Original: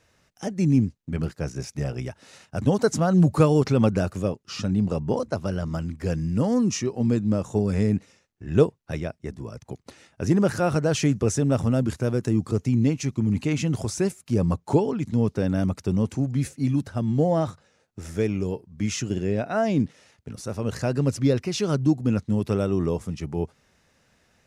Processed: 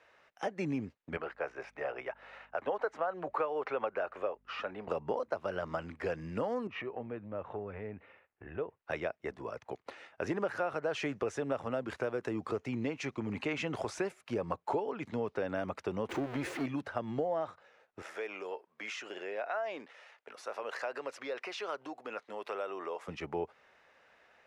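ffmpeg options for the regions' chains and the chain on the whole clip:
-filter_complex "[0:a]asettb=1/sr,asplit=3[a][b][c];[a]atrim=end=1.174[d];[b]atrim=start=1.17:end=4.88,asetpts=PTS-STARTPTS,afade=t=in:d=0.004:c=qsin,afade=t=out:st=3.706:d=0.004:c=qsin,acrossover=split=390 2900:gain=0.141 1 0.158[e][f][g];[e][f][g]amix=inputs=3:normalize=0,aeval=exprs='val(0)+0.00224*(sin(2*PI*50*n/s)+sin(2*PI*2*50*n/s)/2+sin(2*PI*3*50*n/s)/3+sin(2*PI*4*50*n/s)/4+sin(2*PI*5*50*n/s)/5)':c=same[h];[c]atrim=start=4.876[i];[d][h]acrossfade=d=0.004:c1=hsin:c2=qsin[j];[j][i]acrossfade=d=0.004:c1=qsin:c2=hsin,asettb=1/sr,asplit=3[k][l][m];[k]atrim=end=6.674[n];[l]atrim=start=6.67:end=8.82,asetpts=PTS-STARTPTS,afade=t=in:d=0.004:c=qsin,afade=t=out:st=2.146:d=0.004:c=qsin,lowpass=f=2.8k:w=0.5412,lowpass=f=2.8k:w=1.3066,equalizer=f=80:w=1.4:g=9.5,acompressor=threshold=-34dB:ratio=2.5:attack=3.2:release=140:knee=1:detection=peak[o];[m]atrim=start=8.816[p];[n][o]acrossfade=d=0.004:c1=hsin:c2=qsin[q];[q][p]acrossfade=d=0.004:c1=qsin:c2=hsin,asettb=1/sr,asplit=3[r][s][t];[r]atrim=end=16.094[u];[s]atrim=start=16.09:end=16.66,asetpts=PTS-STARTPTS,afade=t=in:d=0.004:c=qsin,afade=t=out:st=0.566:d=0.004:c=qsin,aeval=exprs='val(0)+0.5*0.0237*sgn(val(0))':c=same,equalizer=f=350:t=o:w=0.43:g=11.5[v];[t]atrim=start=16.656[w];[u][v]acrossfade=d=0.004:c1=hsin:c2=qsin[x];[x][w]acrossfade=d=0.004:c1=qsin:c2=hsin,asettb=1/sr,asplit=3[y][z][aa];[y]atrim=end=18.024[ab];[z]atrim=start=18.02:end=23.08,asetpts=PTS-STARTPTS,afade=t=in:d=0.004:c=qsin,afade=t=out:st=5.056:d=0.004:c=qsin,highpass=560,acompressor=threshold=-36dB:ratio=2.5:attack=3.2:release=140:knee=1:detection=peak[ac];[aa]atrim=start=23.076[ad];[ab][ac]acrossfade=d=0.004:c1=hsin:c2=qsin[ae];[ae][ad]acrossfade=d=0.004:c1=qsin:c2=hsin,acrossover=split=430 3100:gain=0.0794 1 0.0891[af][ag][ah];[af][ag][ah]amix=inputs=3:normalize=0,acompressor=threshold=-35dB:ratio=5,volume=4dB"

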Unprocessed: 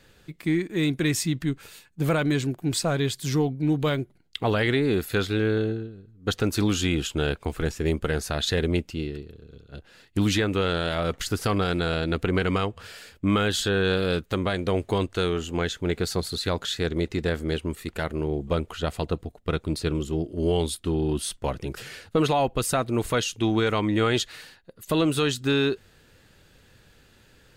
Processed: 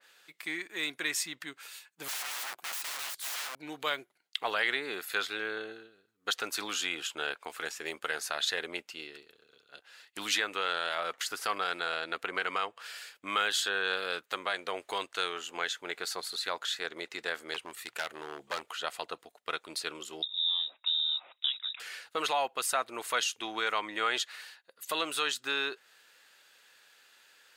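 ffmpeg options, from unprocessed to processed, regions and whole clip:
-filter_complex "[0:a]asettb=1/sr,asplit=3[a][b][c];[a]atrim=end=2.084[d];[b]atrim=start=2.08:end=3.58,asetpts=PTS-STARTPTS,afade=t=in:d=0.004:c=qsin,afade=t=out:st=1.496:d=0.004:c=qsin,bandreject=f=1.8k:w=9.5,aeval=exprs='(mod(33.5*val(0)+1,2)-1)/33.5':c=same[e];[c]atrim=start=3.576[f];[d][e]acrossfade=d=0.004:c1=hsin:c2=qsin[g];[g][f]acrossfade=d=0.004:c1=qsin:c2=hsin,asettb=1/sr,asplit=3[h][i][j];[h]atrim=end=17.544[k];[i]atrim=start=17.54:end=18.77,asetpts=PTS-STARTPTS,afade=t=in:d=0.004:c=qsin,afade=t=out:st=1.226:d=0.004:c=qsin,equalizer=f=120:t=o:w=0.23:g=14,aeval=exprs='0.106*(abs(mod(val(0)/0.106+3,4)-2)-1)':c=same[l];[j]atrim=start=18.766[m];[k][l]acrossfade=d=0.004:c1=hsin:c2=qsin[n];[n][m]acrossfade=d=0.004:c1=qsin:c2=hsin,asettb=1/sr,asplit=3[o][p][q];[o]atrim=end=20.224[r];[p]atrim=start=20.22:end=21.8,asetpts=PTS-STARTPTS,afade=t=in:d=0.004:c=qsin,afade=t=out:st=1.576:d=0.004:c=qsin,highpass=f=160:w=0.5412,highpass=f=160:w=1.3066,lowpass=f=3.4k:t=q:w=0.5098,lowpass=f=3.4k:t=q:w=0.6013,lowpass=f=3.4k:t=q:w=0.9,lowpass=f=3.4k:t=q:w=2.563,afreqshift=-4000,acrossover=split=270|2300[s][t][u];[s]acompressor=threshold=-58dB:ratio=4[v];[t]acompressor=threshold=-51dB:ratio=4[w];[u]acompressor=threshold=-25dB:ratio=4[x];[v][w][x]amix=inputs=3:normalize=0[y];[q]atrim=start=21.796[z];[r][y]acrossfade=d=0.004:c1=hsin:c2=qsin[aa];[aa][z]acrossfade=d=0.004:c1=qsin:c2=hsin,highpass=980,adynamicequalizer=threshold=0.00794:dfrequency=2300:dqfactor=0.7:tfrequency=2300:tqfactor=0.7:attack=5:release=100:ratio=0.375:range=3:mode=cutabove:tftype=highshelf"

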